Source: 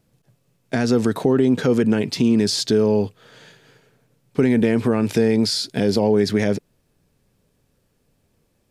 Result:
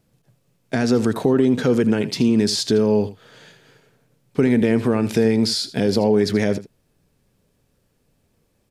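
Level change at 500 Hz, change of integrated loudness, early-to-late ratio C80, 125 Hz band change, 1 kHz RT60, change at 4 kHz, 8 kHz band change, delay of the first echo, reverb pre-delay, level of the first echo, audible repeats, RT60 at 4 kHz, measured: 0.0 dB, 0.0 dB, no reverb audible, 0.0 dB, no reverb audible, 0.0 dB, 0.0 dB, 80 ms, no reverb audible, −15.0 dB, 1, no reverb audible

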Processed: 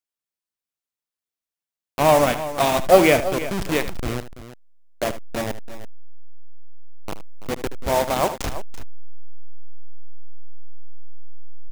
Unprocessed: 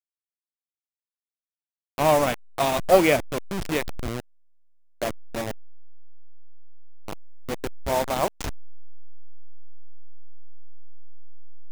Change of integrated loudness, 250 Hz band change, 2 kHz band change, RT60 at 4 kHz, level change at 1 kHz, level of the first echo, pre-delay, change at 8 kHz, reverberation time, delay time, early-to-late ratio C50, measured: +3.5 dB, +4.0 dB, +4.0 dB, no reverb audible, +4.0 dB, −13.0 dB, no reverb audible, +4.0 dB, no reverb audible, 76 ms, no reverb audible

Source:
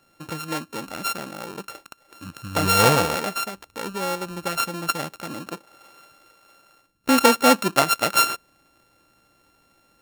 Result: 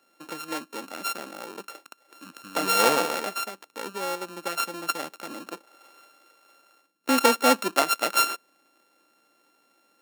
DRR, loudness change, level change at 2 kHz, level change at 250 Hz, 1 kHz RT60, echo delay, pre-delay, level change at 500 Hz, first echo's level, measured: no reverb audible, −3.5 dB, −3.5 dB, −6.0 dB, no reverb audible, no echo audible, no reverb audible, −3.5 dB, no echo audible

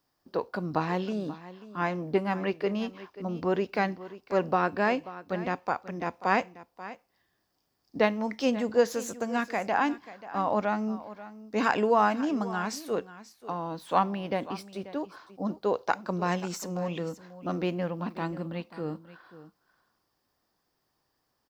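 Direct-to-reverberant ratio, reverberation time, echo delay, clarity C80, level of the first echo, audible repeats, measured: no reverb audible, no reverb audible, 536 ms, no reverb audible, −16.0 dB, 1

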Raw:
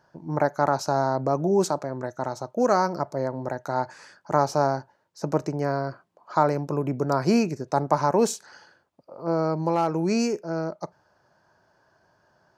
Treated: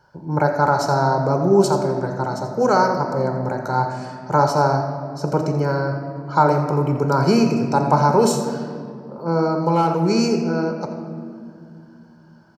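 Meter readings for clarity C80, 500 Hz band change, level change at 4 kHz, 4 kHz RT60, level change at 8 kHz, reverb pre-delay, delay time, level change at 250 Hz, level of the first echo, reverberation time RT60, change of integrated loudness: 6.5 dB, +5.5 dB, +7.0 dB, 1.4 s, +4.0 dB, 3 ms, 85 ms, +6.0 dB, −12.5 dB, 2.3 s, +6.0 dB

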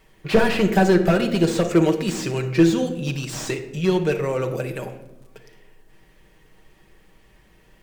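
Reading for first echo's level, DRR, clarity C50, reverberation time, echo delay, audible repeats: no echo audible, 3.0 dB, 10.5 dB, 0.90 s, no echo audible, no echo audible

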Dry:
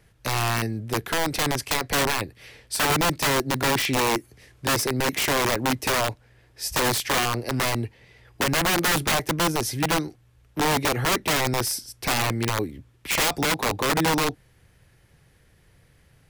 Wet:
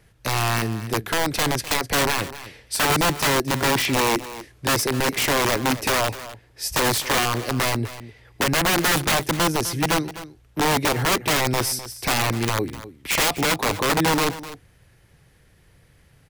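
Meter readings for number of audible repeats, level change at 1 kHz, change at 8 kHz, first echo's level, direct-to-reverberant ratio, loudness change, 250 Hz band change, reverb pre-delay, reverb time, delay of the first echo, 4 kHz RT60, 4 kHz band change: 1, +2.0 dB, +2.0 dB, −15.0 dB, no reverb audible, +2.0 dB, +2.0 dB, no reverb audible, no reverb audible, 253 ms, no reverb audible, +2.0 dB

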